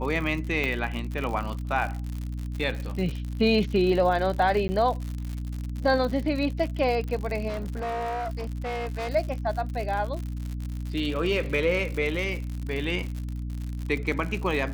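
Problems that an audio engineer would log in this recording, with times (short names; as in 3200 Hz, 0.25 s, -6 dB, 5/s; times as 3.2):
crackle 92/s -31 dBFS
hum 60 Hz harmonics 5 -32 dBFS
0.64 pop -15 dBFS
4.68–4.69 gap 10 ms
7.48–9.1 clipped -27.5 dBFS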